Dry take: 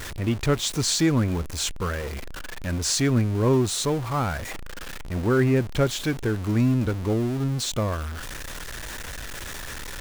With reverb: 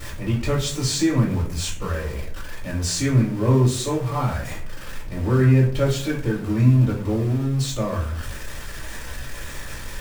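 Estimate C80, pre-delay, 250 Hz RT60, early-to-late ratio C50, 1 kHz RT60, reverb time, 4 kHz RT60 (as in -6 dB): 12.0 dB, 3 ms, 0.70 s, 7.0 dB, 0.45 s, 0.55 s, 0.30 s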